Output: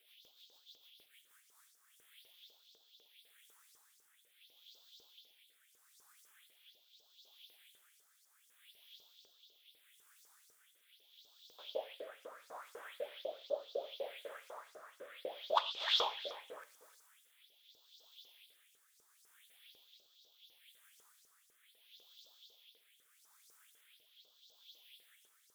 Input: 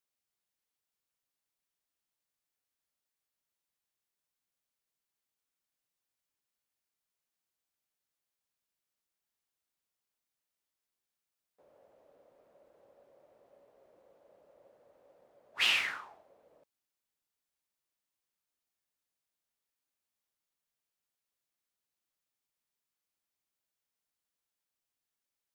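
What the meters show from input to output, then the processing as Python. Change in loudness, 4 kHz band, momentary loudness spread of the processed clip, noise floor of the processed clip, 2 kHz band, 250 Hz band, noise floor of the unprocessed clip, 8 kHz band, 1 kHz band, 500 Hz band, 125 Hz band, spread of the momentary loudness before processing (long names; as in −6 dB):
−11.0 dB, −1.0 dB, 25 LU, −72 dBFS, −11.5 dB, +0.5 dB, below −85 dBFS, −6.0 dB, +8.0 dB, +16.0 dB, can't be measured, 13 LU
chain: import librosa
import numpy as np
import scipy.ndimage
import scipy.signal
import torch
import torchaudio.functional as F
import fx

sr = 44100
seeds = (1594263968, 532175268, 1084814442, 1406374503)

y = fx.peak_eq(x, sr, hz=3400.0, db=14.0, octaves=0.41)
y = fx.over_compress(y, sr, threshold_db=-44.0, ratio=-1.0)
y = fx.rotary_switch(y, sr, hz=6.7, then_hz=0.75, switch_at_s=1.03)
y = fx.phaser_stages(y, sr, stages=4, low_hz=500.0, high_hz=2000.0, hz=0.46, feedback_pct=35)
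y = fx.filter_lfo_highpass(y, sr, shape='saw_up', hz=4.0, low_hz=430.0, high_hz=6000.0, q=4.1)
y = y + 10.0 ** (-15.5 / 20.0) * np.pad(y, (int(308 * sr / 1000.0), 0))[:len(y)]
y = fx.rev_gated(y, sr, seeds[0], gate_ms=150, shape='falling', drr_db=12.0)
y = F.gain(torch.from_numpy(y), 11.0).numpy()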